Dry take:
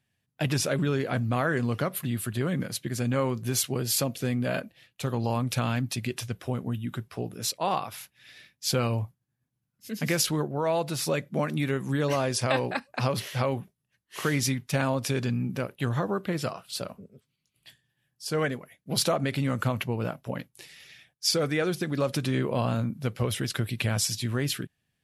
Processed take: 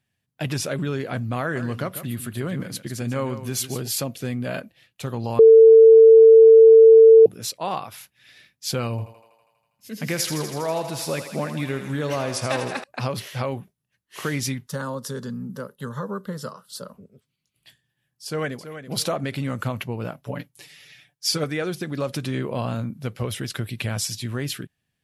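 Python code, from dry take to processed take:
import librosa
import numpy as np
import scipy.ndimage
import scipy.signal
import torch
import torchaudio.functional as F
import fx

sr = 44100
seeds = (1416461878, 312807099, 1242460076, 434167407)

y = fx.echo_single(x, sr, ms=145, db=-11.5, at=(1.41, 3.88))
y = fx.echo_thinned(y, sr, ms=81, feedback_pct=76, hz=390.0, wet_db=-8.5, at=(8.9, 12.84))
y = fx.fixed_phaser(y, sr, hz=480.0, stages=8, at=(14.67, 16.93), fade=0.02)
y = fx.echo_throw(y, sr, start_s=18.25, length_s=0.65, ms=330, feedback_pct=30, wet_db=-10.5)
y = fx.comb(y, sr, ms=6.9, depth=0.73, at=(20.22, 21.44))
y = fx.edit(y, sr, fx.bleep(start_s=5.39, length_s=1.87, hz=448.0, db=-6.0), tone=tone)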